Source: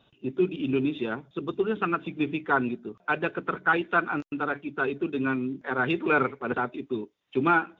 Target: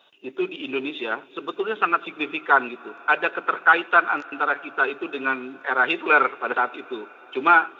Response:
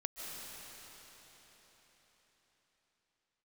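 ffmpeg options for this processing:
-filter_complex "[0:a]highpass=610,asplit=2[link_01][link_02];[1:a]atrim=start_sample=2205,asetrate=38367,aresample=44100,adelay=90[link_03];[link_02][link_03]afir=irnorm=-1:irlink=0,volume=-21.5dB[link_04];[link_01][link_04]amix=inputs=2:normalize=0,volume=8dB"

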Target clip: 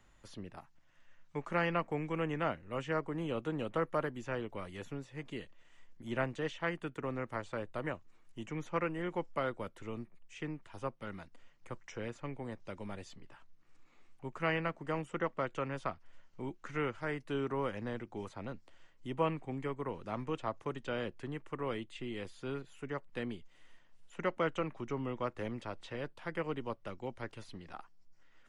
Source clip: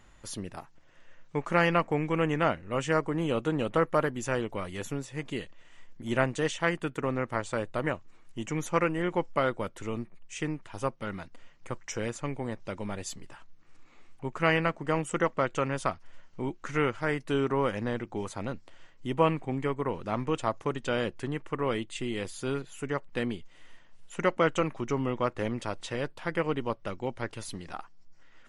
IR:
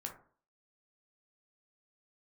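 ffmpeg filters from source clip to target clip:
-filter_complex "[0:a]asettb=1/sr,asplit=3[link_01][link_02][link_03];[link_01]atrim=end=0.594[link_04];[link_02]atrim=start=0.59:end=1.36,asetpts=PTS-STARTPTS,afade=type=in:duration=0.004:curve=qsin,afade=type=out:start_time=0.766:duration=0.004:curve=qsin,equalizer=frequency=430:width_type=o:width=0.66:gain=-11[link_05];[link_03]atrim=start=1.356[link_06];[link_04][link_05]acrossfade=duration=0.004:curve1=hsin:curve2=qsin[link_07];[link_07][link_06]acrossfade=duration=0.004:curve1=qsin:curve2=hsin,acrossover=split=240|450|4600[link_08][link_09][link_10][link_11];[link_11]acompressor=threshold=-60dB:ratio=6[link_12];[link_08][link_09][link_10][link_12]amix=inputs=4:normalize=0,volume=-8dB"

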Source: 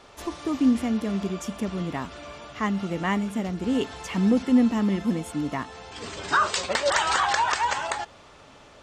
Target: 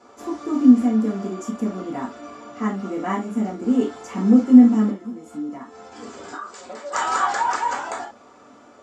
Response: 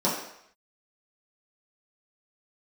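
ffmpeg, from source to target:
-filter_complex "[0:a]asettb=1/sr,asplit=3[link_01][link_02][link_03];[link_01]atrim=end=4.904[link_04];[link_02]atrim=start=4.9:end=6.93,asetpts=PTS-STARTPTS,afade=type=in:duration=0.004:curve=qsin,afade=type=out:start_time=2.026:duration=0.004:curve=qsin,acompressor=threshold=-35dB:ratio=6[link_05];[link_03]atrim=start=6.926[link_06];[link_04][link_05]acrossfade=duration=0.004:curve1=hsin:curve2=qsin[link_07];[link_07][link_06]acrossfade=duration=0.004:curve1=qsin:curve2=hsin[link_08];[1:a]atrim=start_sample=2205,afade=type=out:start_time=0.14:duration=0.01,atrim=end_sample=6615,asetrate=57330,aresample=44100[link_09];[link_08][link_09]afir=irnorm=-1:irlink=0,volume=-11.5dB"

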